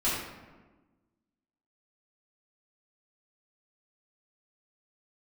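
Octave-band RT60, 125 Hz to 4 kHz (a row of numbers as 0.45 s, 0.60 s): 1.5 s, 1.7 s, 1.4 s, 1.2 s, 1.1 s, 0.70 s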